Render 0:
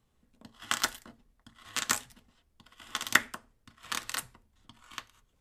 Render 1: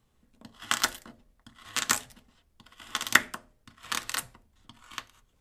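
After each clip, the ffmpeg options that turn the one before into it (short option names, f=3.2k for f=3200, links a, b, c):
-af "bandreject=f=87.24:t=h:w=4,bandreject=f=174.48:t=h:w=4,bandreject=f=261.72:t=h:w=4,bandreject=f=348.96:t=h:w=4,bandreject=f=436.2:t=h:w=4,bandreject=f=523.44:t=h:w=4,bandreject=f=610.68:t=h:w=4,bandreject=f=697.92:t=h:w=4,bandreject=f=785.16:t=h:w=4,volume=3dB"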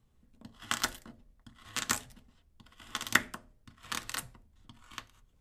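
-af "lowshelf=f=260:g=8.5,volume=-5.5dB"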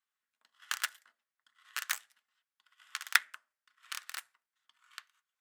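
-af "aeval=exprs='0.501*(cos(1*acos(clip(val(0)/0.501,-1,1)))-cos(1*PI/2))+0.224*(cos(3*acos(clip(val(0)/0.501,-1,1)))-cos(3*PI/2))+0.0891*(cos(8*acos(clip(val(0)/0.501,-1,1)))-cos(8*PI/2))':c=same,highpass=f=1.5k:t=q:w=2,volume=-1dB"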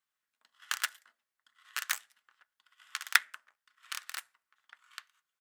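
-filter_complex "[0:a]asplit=2[a][b];[b]adelay=1574,volume=-24dB,highshelf=f=4k:g=-35.4[c];[a][c]amix=inputs=2:normalize=0,volume=1.5dB"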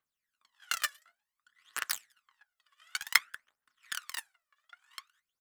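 -filter_complex "[0:a]aphaser=in_gain=1:out_gain=1:delay=1.8:decay=0.75:speed=0.55:type=triangular,asplit=2[a][b];[b]acrusher=bits=4:mix=0:aa=0.000001,volume=-9.5dB[c];[a][c]amix=inputs=2:normalize=0,volume=-4.5dB"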